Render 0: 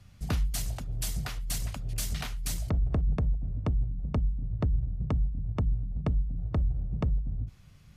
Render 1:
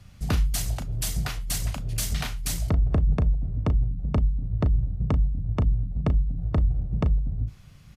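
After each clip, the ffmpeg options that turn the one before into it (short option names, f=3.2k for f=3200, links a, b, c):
-filter_complex "[0:a]asplit=2[a][b];[b]adelay=36,volume=-11dB[c];[a][c]amix=inputs=2:normalize=0,volume=5dB"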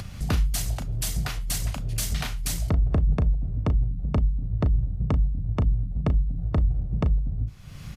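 -af "acompressor=mode=upward:threshold=-25dB:ratio=2.5"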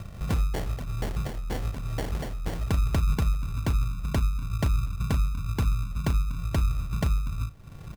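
-af "acrusher=samples=35:mix=1:aa=0.000001,volume=-2.5dB"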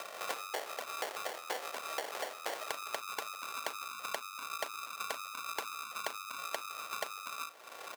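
-af "highpass=f=510:w=0.5412,highpass=f=510:w=1.3066,acompressor=threshold=-42dB:ratio=12,volume=8dB"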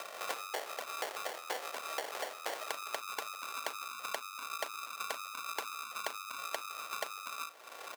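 -af "highpass=f=170:p=1"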